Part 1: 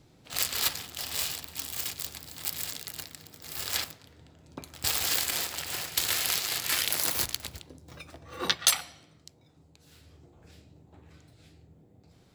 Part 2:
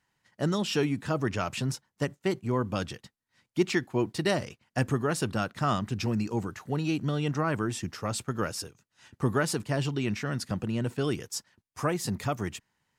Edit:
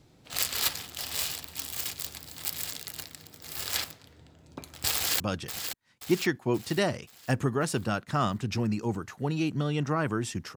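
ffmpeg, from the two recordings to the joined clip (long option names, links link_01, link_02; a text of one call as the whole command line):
ffmpeg -i cue0.wav -i cue1.wav -filter_complex "[0:a]apad=whole_dur=10.56,atrim=end=10.56,atrim=end=5.202[link_01];[1:a]atrim=start=2.678:end=8.04[link_02];[link_01][link_02]acrossfade=duration=0.004:curve1=hsin:curve2=hsin,asplit=2[link_03][link_04];[link_04]afade=type=in:start_time=4.95:duration=0.01,afade=type=out:start_time=5.2:duration=0.01,aecho=0:1:530|1060|1590|2120|2650|3180:0.421697|0.210848|0.105424|0.0527121|0.026356|0.013178[link_05];[link_03][link_05]amix=inputs=2:normalize=0" out.wav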